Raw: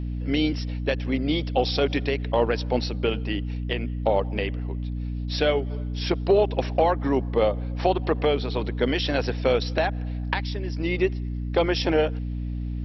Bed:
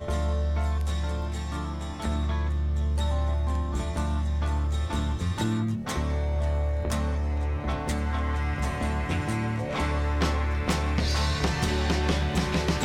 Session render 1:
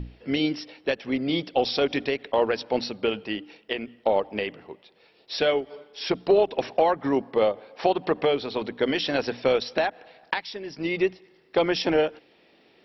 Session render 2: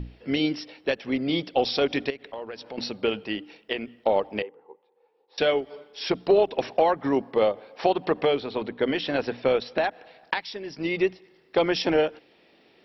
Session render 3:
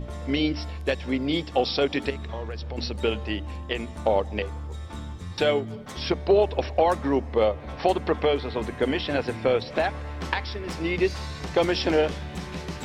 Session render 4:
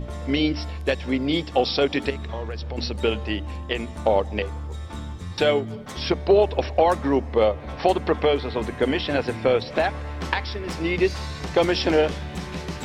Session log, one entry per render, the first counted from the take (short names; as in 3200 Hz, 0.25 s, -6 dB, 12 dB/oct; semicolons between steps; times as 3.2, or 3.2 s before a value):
notches 60/120/180/240/300 Hz
2.1–2.78 compressor 2.5:1, threshold -39 dBFS; 4.42–5.38 double band-pass 640 Hz, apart 0.78 oct; 8.4–9.84 air absorption 160 m
add bed -8.5 dB
gain +2.5 dB